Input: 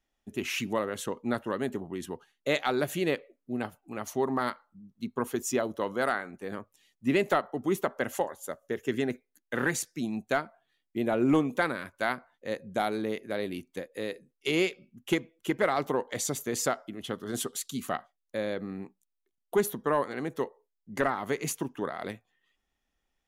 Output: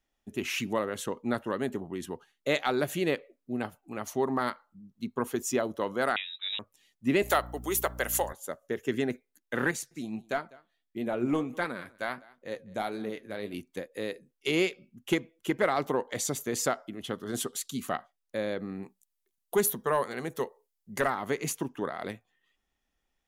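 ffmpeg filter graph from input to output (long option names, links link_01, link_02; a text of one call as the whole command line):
ffmpeg -i in.wav -filter_complex "[0:a]asettb=1/sr,asplit=3[link_01][link_02][link_03];[link_01]atrim=end=6.164[link_04];[link_02]atrim=start=6.16:end=6.59,asetpts=PTS-STARTPTS,afade=type=in:duration=0.004:curve=qsin,afade=type=out:start_time=0.426:duration=0.004:curve=qsin,lowshelf=frequency=210:gain=7.5,lowpass=frequency=3400:width_type=q:width=0.5098,lowpass=frequency=3400:width_type=q:width=0.6013,lowpass=frequency=3400:width_type=q:width=0.9,lowpass=frequency=3400:width_type=q:width=2.563,afreqshift=-4000[link_05];[link_03]atrim=start=6.586[link_06];[link_04][link_05]acrossfade=duration=0.004:curve1=hsin:curve2=qsin[link_07];[link_07][link_06]acrossfade=duration=0.004:curve1=qsin:curve2=hsin,asettb=1/sr,asplit=3[link_08][link_09][link_10];[link_08]atrim=end=7.224[link_11];[link_09]atrim=start=7.22:end=8.33,asetpts=PTS-STARTPTS,afade=type=in:duration=0.004:curve=qsin,afade=type=out:start_time=1.106:duration=0.004:curve=qsin,highpass=430,aeval=exprs='val(0)+0.00794*(sin(2*PI*60*n/s)+sin(2*PI*2*60*n/s)/2+sin(2*PI*3*60*n/s)/3+sin(2*PI*4*60*n/s)/4+sin(2*PI*5*60*n/s)/5)':channel_layout=same,aemphasis=mode=production:type=75kf[link_12];[link_10]atrim=start=8.326[link_13];[link_11][link_12]acrossfade=duration=0.004:curve1=hsin:curve2=qsin[link_14];[link_14][link_13]acrossfade=duration=0.004:curve1=qsin:curve2=hsin,asettb=1/sr,asplit=3[link_15][link_16][link_17];[link_15]atrim=end=9.714[link_18];[link_16]atrim=start=9.71:end=13.54,asetpts=PTS-STARTPTS,afade=type=in:duration=0.004:curve=qsin,afade=type=out:start_time=3.826:duration=0.004:curve=qsin,aecho=1:1:200:0.0668,atrim=end_sample=168903,flanger=delay=3.9:depth=7.3:regen=63:speed=1.5:shape=triangular[link_19];[link_17]atrim=start=13.536[link_20];[link_18][link_19]acrossfade=duration=0.004:curve1=hsin:curve2=qsin[link_21];[link_21][link_20]acrossfade=duration=0.004:curve1=qsin:curve2=hsin,asettb=1/sr,asplit=3[link_22][link_23][link_24];[link_22]atrim=end=18.834[link_25];[link_23]atrim=start=18.83:end=21.15,asetpts=PTS-STARTPTS,afade=type=in:duration=0.004:curve=qsin,afade=type=out:start_time=2.316:duration=0.004:curve=qsin,aemphasis=mode=production:type=cd,bandreject=frequency=290:width=5.4[link_26];[link_24]atrim=start=21.146[link_27];[link_25][link_26]acrossfade=duration=0.004:curve1=hsin:curve2=qsin[link_28];[link_28][link_27]acrossfade=duration=0.004:curve1=qsin:curve2=hsin" out.wav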